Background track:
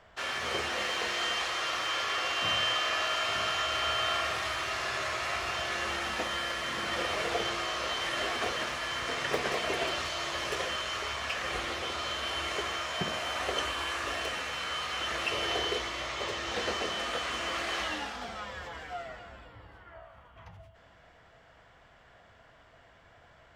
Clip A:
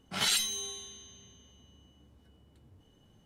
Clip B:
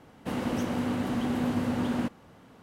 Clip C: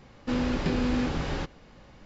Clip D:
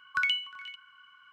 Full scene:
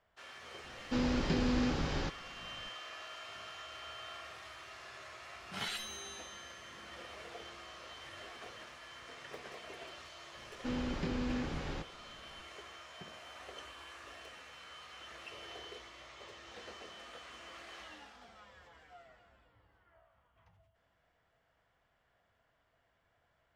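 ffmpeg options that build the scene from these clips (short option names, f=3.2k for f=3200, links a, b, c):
-filter_complex "[3:a]asplit=2[a][b];[0:a]volume=-17.5dB[c];[a]equalizer=f=5.1k:t=o:w=0.77:g=4.5[d];[1:a]acrossover=split=3200[e][f];[f]acompressor=threshold=-41dB:ratio=4:attack=1:release=60[g];[e][g]amix=inputs=2:normalize=0[h];[d]atrim=end=2.05,asetpts=PTS-STARTPTS,volume=-5dB,afade=t=in:d=0.004:c=hsin,afade=t=out:st=2.046:d=0.004:c=hsin,adelay=640[i];[h]atrim=end=3.25,asetpts=PTS-STARTPTS,volume=-6.5dB,afade=t=in:d=0.004:c=hsin,afade=t=out:st=3.246:d=0.004:c=hsin,adelay=5400[j];[b]atrim=end=2.05,asetpts=PTS-STARTPTS,volume=-9.5dB,afade=t=in:d=0.004:c=hsin,afade=t=out:st=2.046:d=0.004:c=hsin,adelay=10370[k];[c][i][j][k]amix=inputs=4:normalize=0"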